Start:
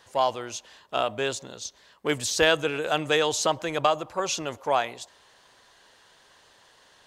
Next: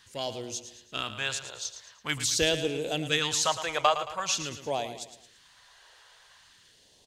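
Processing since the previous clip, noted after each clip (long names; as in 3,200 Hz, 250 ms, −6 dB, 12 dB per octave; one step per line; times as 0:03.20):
all-pass phaser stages 2, 0.46 Hz, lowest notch 210–1,400 Hz
on a send: repeating echo 111 ms, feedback 43%, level −11 dB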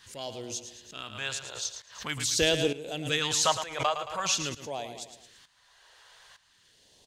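shaped tremolo saw up 1.1 Hz, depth 80%
background raised ahead of every attack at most 110 dB per second
level +3 dB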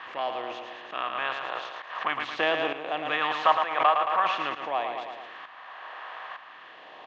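compressor on every frequency bin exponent 0.6
loudspeaker in its box 390–2,600 Hz, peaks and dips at 450 Hz −7 dB, 750 Hz +6 dB, 1,100 Hz +8 dB, 1,800 Hz +4 dB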